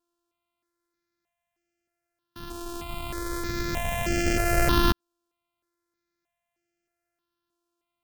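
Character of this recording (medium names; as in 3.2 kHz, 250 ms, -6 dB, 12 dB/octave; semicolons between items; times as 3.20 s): a buzz of ramps at a fixed pitch in blocks of 128 samples; notches that jump at a steady rate 3.2 Hz 570–3800 Hz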